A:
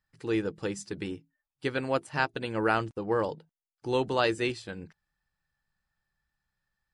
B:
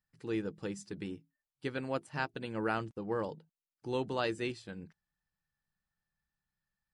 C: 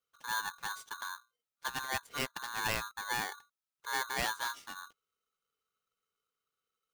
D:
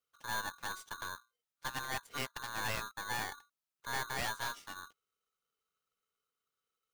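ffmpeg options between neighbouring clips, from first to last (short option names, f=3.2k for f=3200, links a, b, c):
-af "equalizer=f=190:w=1.3:g=5.5,volume=-8dB"
-af "afreqshift=-18,aeval=exprs='val(0)*sgn(sin(2*PI*1300*n/s))':c=same,volume=-1dB"
-af "aeval=exprs='(tanh(44.7*val(0)+0.65)-tanh(0.65))/44.7':c=same,volume=2dB"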